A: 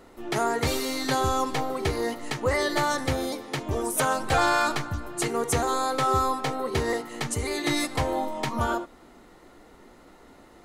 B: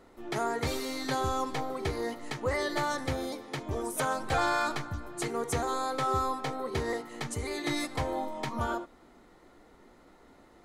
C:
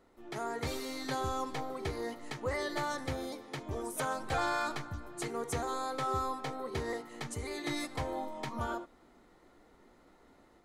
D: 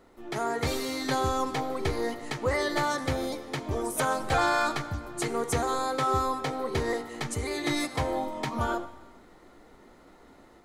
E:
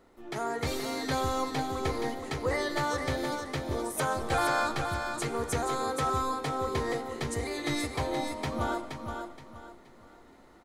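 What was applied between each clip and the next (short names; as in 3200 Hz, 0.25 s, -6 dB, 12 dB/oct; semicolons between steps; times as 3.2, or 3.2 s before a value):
high shelf 6700 Hz -4.5 dB; notch 2800 Hz, Q 21; gain -5.5 dB
AGC gain up to 4 dB; gain -8.5 dB
reverb RT60 1.2 s, pre-delay 45 ms, DRR 16.5 dB; gain +7.5 dB
feedback echo 0.473 s, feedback 30%, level -6 dB; gain -3 dB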